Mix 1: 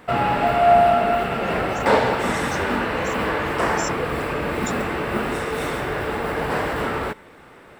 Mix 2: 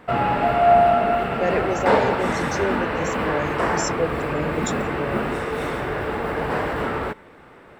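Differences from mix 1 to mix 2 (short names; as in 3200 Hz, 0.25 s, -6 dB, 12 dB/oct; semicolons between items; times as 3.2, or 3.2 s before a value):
speech +9.0 dB; master: add high shelf 3700 Hz -8.5 dB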